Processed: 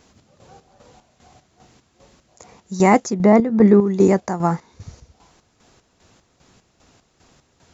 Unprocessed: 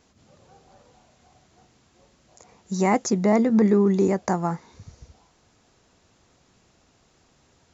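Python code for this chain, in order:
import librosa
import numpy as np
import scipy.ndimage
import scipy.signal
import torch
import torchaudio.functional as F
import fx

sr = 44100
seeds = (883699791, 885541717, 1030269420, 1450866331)

y = fx.lowpass(x, sr, hz=2300.0, slope=6, at=(3.14, 3.81))
y = fx.chopper(y, sr, hz=2.5, depth_pct=60, duty_pct=50)
y = F.gain(torch.from_numpy(y), 7.0).numpy()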